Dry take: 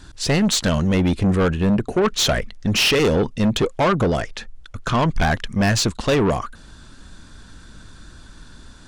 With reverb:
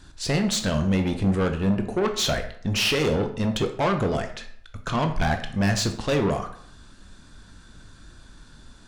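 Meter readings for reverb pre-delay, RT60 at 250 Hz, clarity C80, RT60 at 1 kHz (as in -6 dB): 15 ms, 0.60 s, 13.0 dB, 0.65 s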